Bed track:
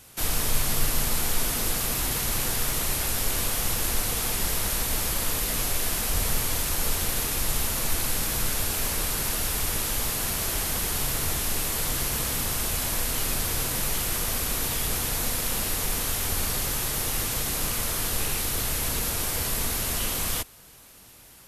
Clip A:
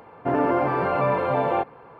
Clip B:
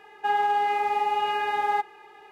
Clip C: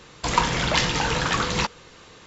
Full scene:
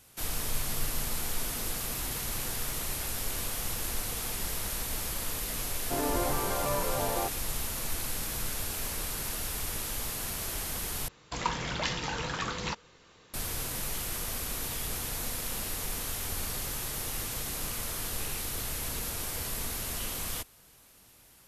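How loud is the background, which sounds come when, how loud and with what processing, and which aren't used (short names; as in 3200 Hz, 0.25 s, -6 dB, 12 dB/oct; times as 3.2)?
bed track -7.5 dB
5.65 add A -10 dB
11.08 replace with C -10.5 dB
not used: B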